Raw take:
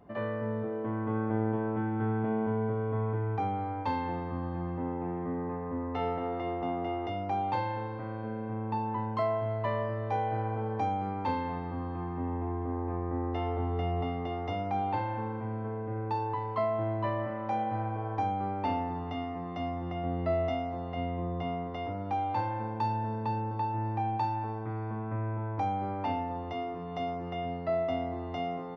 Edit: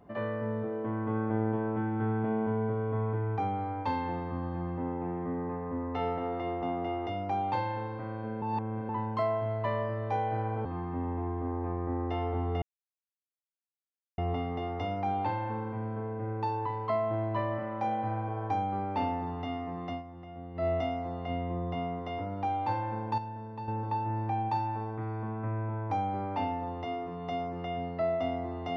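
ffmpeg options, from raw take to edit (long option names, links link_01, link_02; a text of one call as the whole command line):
ffmpeg -i in.wav -filter_complex "[0:a]asplit=9[link_01][link_02][link_03][link_04][link_05][link_06][link_07][link_08][link_09];[link_01]atrim=end=8.422[link_10];[link_02]atrim=start=8.418:end=8.892,asetpts=PTS-STARTPTS,areverse[link_11];[link_03]atrim=start=8.888:end=10.652[link_12];[link_04]atrim=start=11.888:end=13.86,asetpts=PTS-STARTPTS,afade=type=out:start_time=1.968:duration=0.004:curve=hsin,apad=pad_dur=1.56[link_13];[link_05]atrim=start=13.86:end=19.71,asetpts=PTS-STARTPTS,afade=type=in:duration=0.004:curve=hsin,afade=type=out:start_time=5.72:duration=0.13:silence=0.281838[link_14];[link_06]atrim=start=19.71:end=20.22,asetpts=PTS-STARTPTS,volume=-11dB[link_15];[link_07]atrim=start=20.22:end=22.862,asetpts=PTS-STARTPTS,afade=type=in:duration=0.13:silence=0.281838[link_16];[link_08]atrim=start=22.858:end=23.362,asetpts=PTS-STARTPTS,volume=-8dB[link_17];[link_09]atrim=start=23.358[link_18];[link_10][link_11]acrossfade=duration=0.004:curve1=hsin:curve2=hsin[link_19];[link_19][link_12]acrossfade=duration=0.004:curve1=hsin:curve2=hsin[link_20];[link_13][link_14][link_15][link_16]concat=n=4:v=0:a=1[link_21];[link_20][link_21]acrossfade=duration=0.004:curve1=hsin:curve2=hsin[link_22];[link_22][link_17]acrossfade=duration=0.004:curve1=hsin:curve2=hsin[link_23];[link_23][link_18]acrossfade=duration=0.004:curve1=hsin:curve2=hsin" out.wav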